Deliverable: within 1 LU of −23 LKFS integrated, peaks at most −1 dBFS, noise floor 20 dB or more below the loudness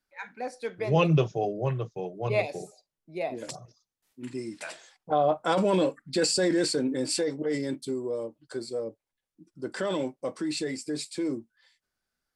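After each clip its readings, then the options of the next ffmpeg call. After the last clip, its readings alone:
integrated loudness −29.0 LKFS; sample peak −10.5 dBFS; target loudness −23.0 LKFS
→ -af "volume=6dB"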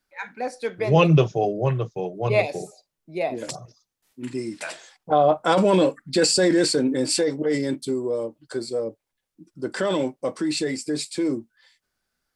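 integrated loudness −23.0 LKFS; sample peak −4.5 dBFS; background noise floor −81 dBFS

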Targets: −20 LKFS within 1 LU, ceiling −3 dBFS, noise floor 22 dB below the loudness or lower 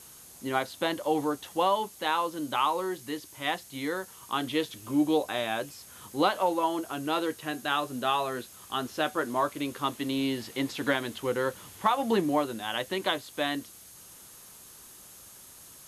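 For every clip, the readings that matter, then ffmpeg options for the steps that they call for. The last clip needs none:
interfering tone 6,500 Hz; level of the tone −60 dBFS; background noise floor −51 dBFS; target noise floor −52 dBFS; integrated loudness −30.0 LKFS; sample peak −12.0 dBFS; target loudness −20.0 LKFS
→ -af "bandreject=frequency=6500:width=30"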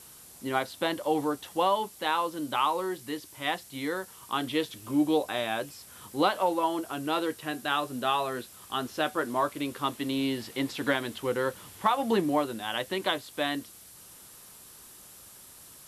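interfering tone none found; background noise floor −51 dBFS; target noise floor −52 dBFS
→ -af "afftdn=noise_reduction=6:noise_floor=-51"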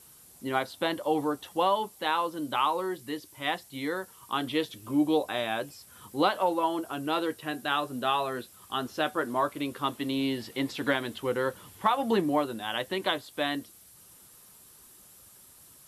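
background noise floor −55 dBFS; integrated loudness −30.0 LKFS; sample peak −12.0 dBFS; target loudness −20.0 LKFS
→ -af "volume=10dB,alimiter=limit=-3dB:level=0:latency=1"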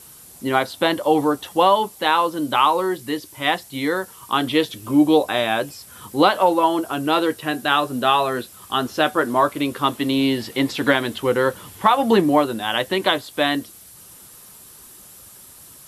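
integrated loudness −20.0 LKFS; sample peak −3.0 dBFS; background noise floor −45 dBFS

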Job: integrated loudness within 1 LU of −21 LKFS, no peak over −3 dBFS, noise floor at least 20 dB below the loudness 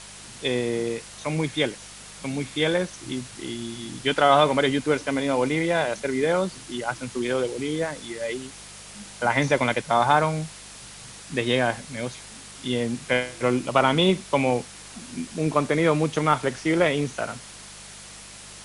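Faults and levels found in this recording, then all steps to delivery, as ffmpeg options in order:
mains hum 50 Hz; hum harmonics up to 200 Hz; level of the hum −52 dBFS; background noise floor −43 dBFS; target noise floor −45 dBFS; integrated loudness −24.5 LKFS; sample peak −5.0 dBFS; target loudness −21.0 LKFS
→ -af "bandreject=frequency=50:width_type=h:width=4,bandreject=frequency=100:width_type=h:width=4,bandreject=frequency=150:width_type=h:width=4,bandreject=frequency=200:width_type=h:width=4"
-af "afftdn=noise_reduction=6:noise_floor=-43"
-af "volume=3.5dB,alimiter=limit=-3dB:level=0:latency=1"

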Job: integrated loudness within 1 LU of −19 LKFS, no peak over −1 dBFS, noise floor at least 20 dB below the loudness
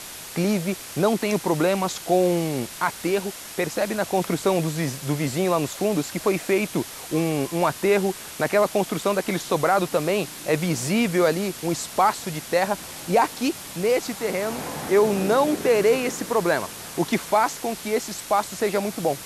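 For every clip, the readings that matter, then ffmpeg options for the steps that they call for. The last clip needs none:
background noise floor −38 dBFS; target noise floor −44 dBFS; integrated loudness −23.5 LKFS; sample peak −8.0 dBFS; target loudness −19.0 LKFS
→ -af "afftdn=noise_reduction=6:noise_floor=-38"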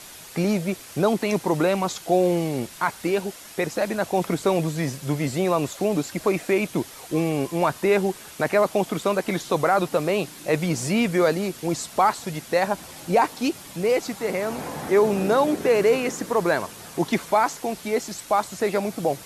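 background noise floor −43 dBFS; target noise floor −44 dBFS
→ -af "afftdn=noise_reduction=6:noise_floor=-43"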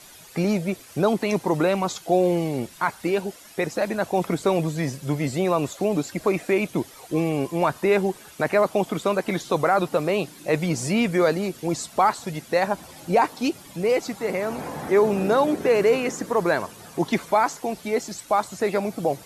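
background noise floor −47 dBFS; integrated loudness −24.0 LKFS; sample peak −8.5 dBFS; target loudness −19.0 LKFS
→ -af "volume=5dB"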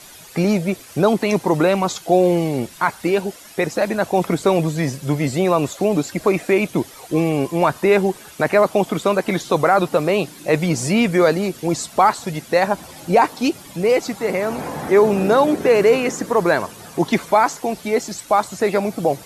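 integrated loudness −19.0 LKFS; sample peak −3.5 dBFS; background noise floor −42 dBFS

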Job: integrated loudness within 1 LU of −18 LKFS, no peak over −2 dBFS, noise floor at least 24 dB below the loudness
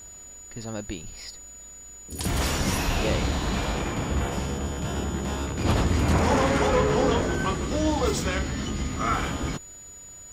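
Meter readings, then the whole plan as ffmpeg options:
interfering tone 6,900 Hz; level of the tone −42 dBFS; integrated loudness −26.0 LKFS; sample peak −10.5 dBFS; target loudness −18.0 LKFS
→ -af "bandreject=frequency=6900:width=30"
-af "volume=8dB"

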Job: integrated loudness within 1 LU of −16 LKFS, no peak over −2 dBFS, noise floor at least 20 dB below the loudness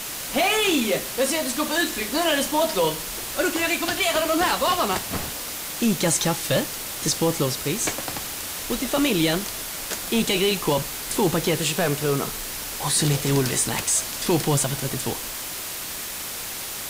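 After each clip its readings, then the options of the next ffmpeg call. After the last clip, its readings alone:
background noise floor −32 dBFS; target noise floor −43 dBFS; integrated loudness −23.0 LKFS; sample peak −9.5 dBFS; target loudness −16.0 LKFS
→ -af "afftdn=noise_reduction=11:noise_floor=-32"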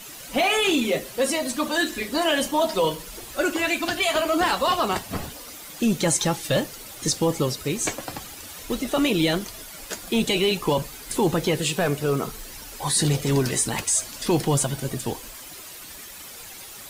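background noise floor −41 dBFS; target noise floor −44 dBFS
→ -af "afftdn=noise_reduction=6:noise_floor=-41"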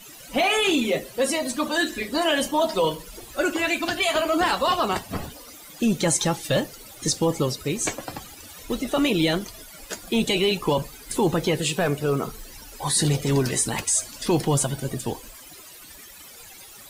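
background noise floor −45 dBFS; integrated loudness −23.5 LKFS; sample peak −10.0 dBFS; target loudness −16.0 LKFS
→ -af "volume=7.5dB"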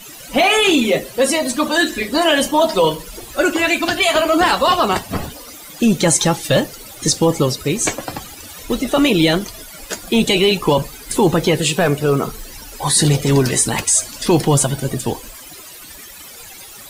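integrated loudness −16.0 LKFS; sample peak −2.5 dBFS; background noise floor −37 dBFS

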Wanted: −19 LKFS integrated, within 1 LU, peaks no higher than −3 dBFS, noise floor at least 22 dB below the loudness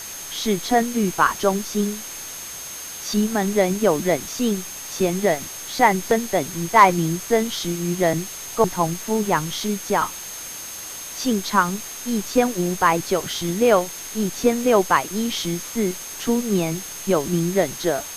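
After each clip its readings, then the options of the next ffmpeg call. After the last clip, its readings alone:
interfering tone 6,400 Hz; level of the tone −35 dBFS; background noise floor −34 dBFS; target noise floor −44 dBFS; integrated loudness −21.5 LKFS; sample peak −1.5 dBFS; target loudness −19.0 LKFS
→ -af "bandreject=frequency=6400:width=30"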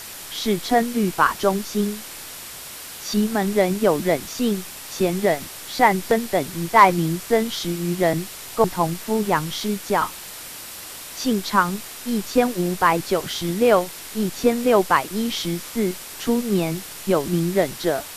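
interfering tone none found; background noise floor −37 dBFS; target noise floor −44 dBFS
→ -af "afftdn=noise_reduction=7:noise_floor=-37"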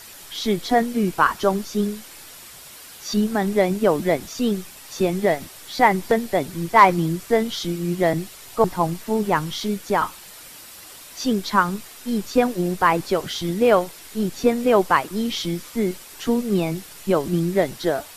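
background noise floor −42 dBFS; target noise floor −44 dBFS
→ -af "afftdn=noise_reduction=6:noise_floor=-42"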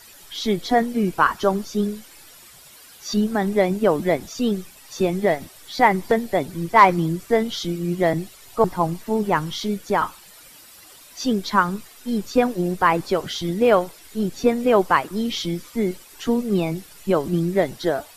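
background noise floor −47 dBFS; integrated loudness −22.0 LKFS; sample peak −1.5 dBFS; target loudness −19.0 LKFS
→ -af "volume=3dB,alimiter=limit=-3dB:level=0:latency=1"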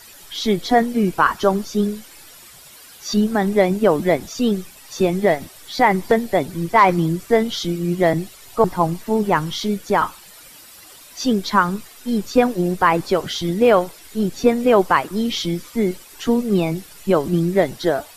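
integrated loudness −19.5 LKFS; sample peak −3.0 dBFS; background noise floor −44 dBFS

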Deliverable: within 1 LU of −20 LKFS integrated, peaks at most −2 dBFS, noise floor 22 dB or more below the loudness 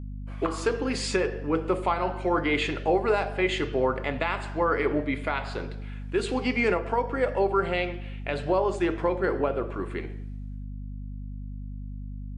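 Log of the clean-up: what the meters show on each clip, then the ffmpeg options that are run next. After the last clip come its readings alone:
mains hum 50 Hz; hum harmonics up to 250 Hz; level of the hum −34 dBFS; integrated loudness −27.0 LKFS; sample peak −12.0 dBFS; target loudness −20.0 LKFS
→ -af "bandreject=frequency=50:width_type=h:width=4,bandreject=frequency=100:width_type=h:width=4,bandreject=frequency=150:width_type=h:width=4,bandreject=frequency=200:width_type=h:width=4,bandreject=frequency=250:width_type=h:width=4"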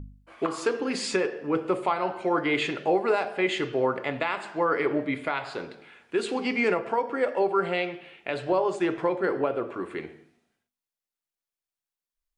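mains hum none found; integrated loudness −27.5 LKFS; sample peak −12.0 dBFS; target loudness −20.0 LKFS
→ -af "volume=7.5dB"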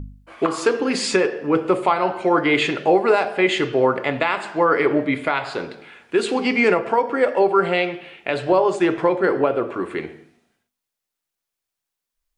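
integrated loudness −20.0 LKFS; sample peak −4.5 dBFS; background noise floor −84 dBFS

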